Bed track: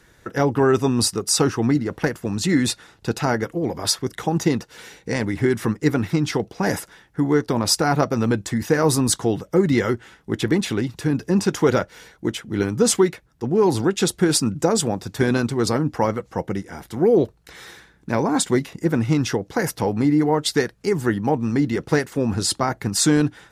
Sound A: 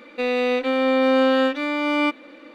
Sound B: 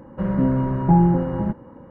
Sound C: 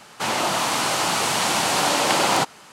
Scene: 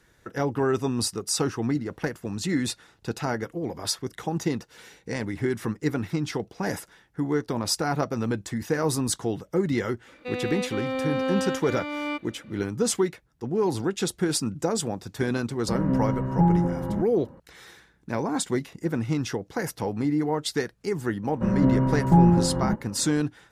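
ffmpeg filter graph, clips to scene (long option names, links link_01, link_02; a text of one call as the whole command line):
ffmpeg -i bed.wav -i cue0.wav -i cue1.wav -filter_complex "[2:a]asplit=2[link_01][link_02];[0:a]volume=-7dB[link_03];[1:a]atrim=end=2.54,asetpts=PTS-STARTPTS,volume=-9.5dB,afade=type=in:duration=0.004:curve=hsin,afade=type=out:start_time=2.536:duration=0.004:curve=hsin,adelay=10070[link_04];[link_01]atrim=end=1.9,asetpts=PTS-STARTPTS,volume=-5dB,afade=type=in:duration=0.004:curve=hsin,afade=type=out:start_time=1.896:duration=0.004:curve=hsin,adelay=15500[link_05];[link_02]atrim=end=1.9,asetpts=PTS-STARTPTS,volume=-1.5dB,afade=type=in:duration=0.004:curve=hsin,afade=type=out:start_time=1.896:duration=0.004:curve=hsin,adelay=21230[link_06];[link_03][link_04][link_05][link_06]amix=inputs=4:normalize=0" out.wav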